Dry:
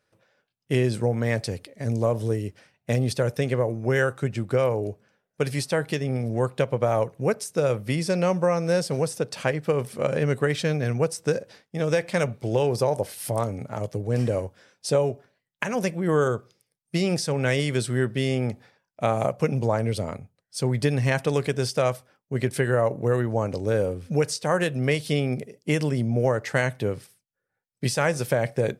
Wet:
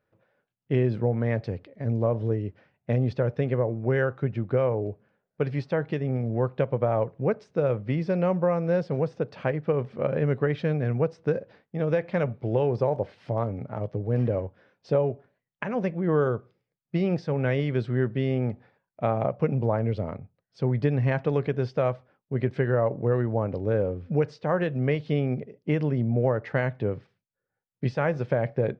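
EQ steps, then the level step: air absorption 190 m; tape spacing loss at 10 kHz 23 dB; 0.0 dB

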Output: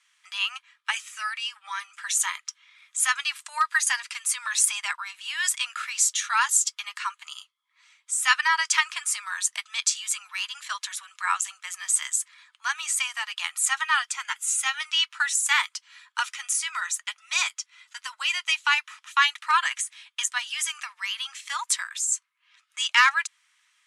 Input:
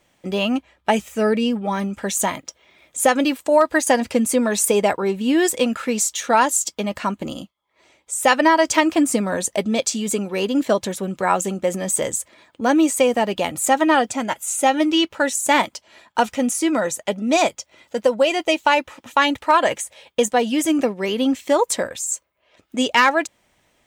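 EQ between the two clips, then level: steep high-pass 1100 Hz 48 dB/oct; elliptic low-pass 11000 Hz, stop band 80 dB; 0.0 dB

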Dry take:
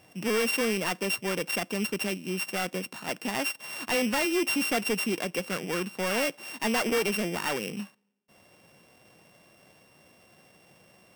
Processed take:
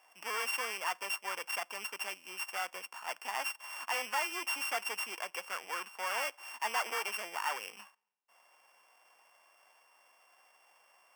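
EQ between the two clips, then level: resonant high-pass 940 Hz, resonance Q 2.3; Butterworth band-stop 3900 Hz, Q 4.6; -7.0 dB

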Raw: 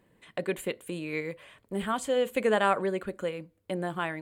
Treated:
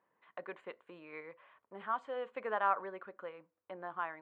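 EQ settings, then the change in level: band-pass 1100 Hz, Q 2.1; air absorption 140 m; -1.5 dB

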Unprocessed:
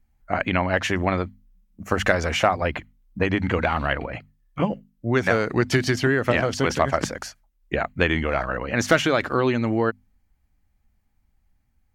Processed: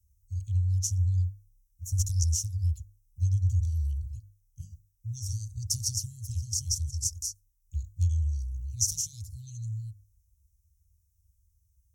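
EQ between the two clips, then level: HPF 67 Hz; Chebyshev band-stop 100–5700 Hz, order 5; bell 2800 Hz +5 dB 0.8 oct; +7.0 dB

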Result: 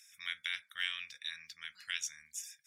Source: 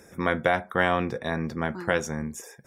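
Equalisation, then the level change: inverse Chebyshev high-pass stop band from 840 Hz, stop band 60 dB; tilt -3.5 dB/oct; +8.5 dB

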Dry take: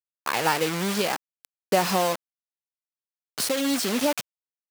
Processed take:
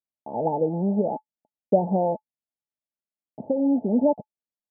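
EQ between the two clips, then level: rippled Chebyshev low-pass 890 Hz, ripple 9 dB; air absorption 410 m; dynamic EQ 460 Hz, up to +7 dB, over -49 dBFS, Q 3.8; +7.0 dB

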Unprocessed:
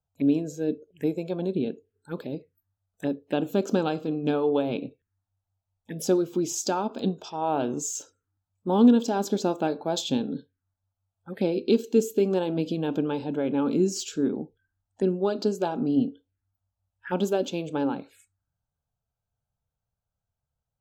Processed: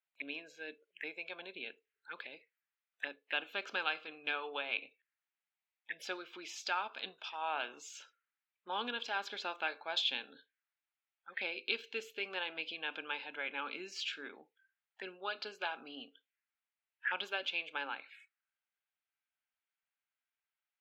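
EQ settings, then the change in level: resonant high-pass 2100 Hz, resonance Q 2.3; air absorption 370 m; +6.0 dB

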